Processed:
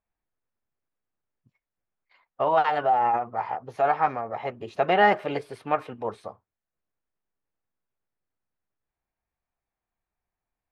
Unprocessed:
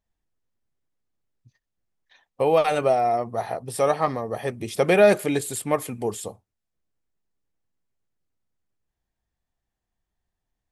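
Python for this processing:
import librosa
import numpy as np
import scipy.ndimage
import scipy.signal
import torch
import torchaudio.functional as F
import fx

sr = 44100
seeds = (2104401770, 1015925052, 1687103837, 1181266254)

y = fx.tilt_shelf(x, sr, db=-8.5, hz=690.0)
y = fx.formant_shift(y, sr, semitones=3)
y = scipy.signal.sosfilt(scipy.signal.butter(2, 1300.0, 'lowpass', fs=sr, output='sos'), y)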